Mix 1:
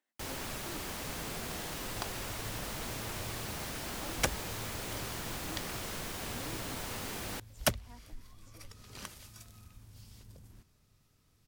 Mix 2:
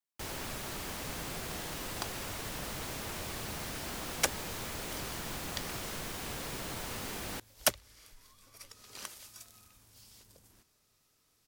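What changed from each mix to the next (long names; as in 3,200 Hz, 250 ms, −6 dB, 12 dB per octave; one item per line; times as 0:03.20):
speech: muted
second sound: add bass and treble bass −13 dB, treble +4 dB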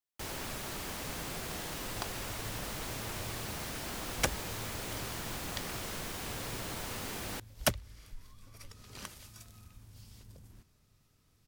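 second sound: add bass and treble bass +13 dB, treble −4 dB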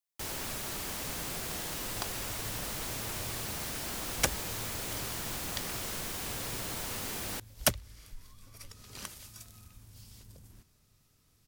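master: add high-shelf EQ 4,700 Hz +6 dB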